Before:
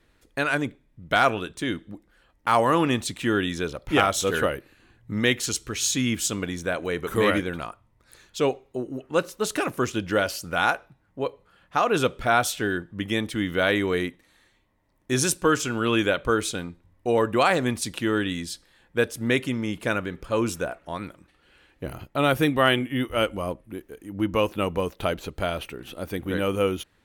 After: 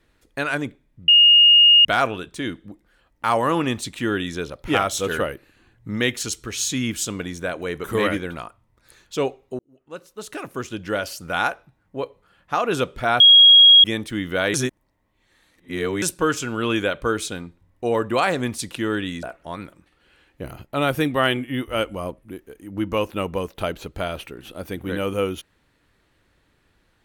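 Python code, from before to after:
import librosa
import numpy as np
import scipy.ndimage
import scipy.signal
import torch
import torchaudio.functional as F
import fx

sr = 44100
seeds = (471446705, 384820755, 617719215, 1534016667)

y = fx.edit(x, sr, fx.insert_tone(at_s=1.08, length_s=0.77, hz=2850.0, db=-8.5),
    fx.fade_in_span(start_s=8.82, length_s=1.71),
    fx.bleep(start_s=12.43, length_s=0.64, hz=3290.0, db=-6.5),
    fx.reverse_span(start_s=13.77, length_s=1.48),
    fx.cut(start_s=18.46, length_s=2.19), tone=tone)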